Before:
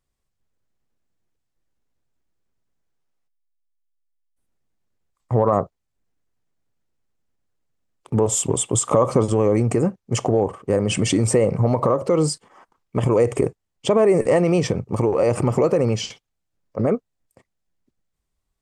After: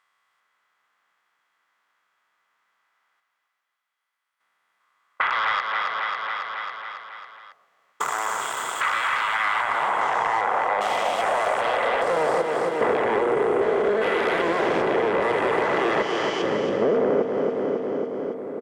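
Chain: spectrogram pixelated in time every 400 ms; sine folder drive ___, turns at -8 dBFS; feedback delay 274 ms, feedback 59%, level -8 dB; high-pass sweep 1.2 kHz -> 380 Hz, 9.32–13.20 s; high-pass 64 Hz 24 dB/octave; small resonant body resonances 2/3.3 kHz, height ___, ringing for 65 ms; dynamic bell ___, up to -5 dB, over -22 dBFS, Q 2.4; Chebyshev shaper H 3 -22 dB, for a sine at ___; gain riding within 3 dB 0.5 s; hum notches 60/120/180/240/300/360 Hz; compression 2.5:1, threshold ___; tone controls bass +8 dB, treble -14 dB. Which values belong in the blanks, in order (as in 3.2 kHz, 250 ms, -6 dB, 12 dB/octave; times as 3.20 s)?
18 dB, 11 dB, 310 Hz, 4 dBFS, -25 dBFS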